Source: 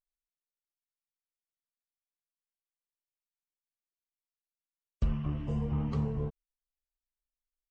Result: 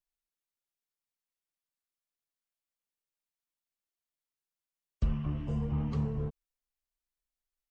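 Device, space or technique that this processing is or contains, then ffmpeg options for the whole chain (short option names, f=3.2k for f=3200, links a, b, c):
one-band saturation: -filter_complex "[0:a]acrossover=split=250|3100[a][b][c];[b]asoftclip=type=tanh:threshold=-37dB[d];[a][d][c]amix=inputs=3:normalize=0"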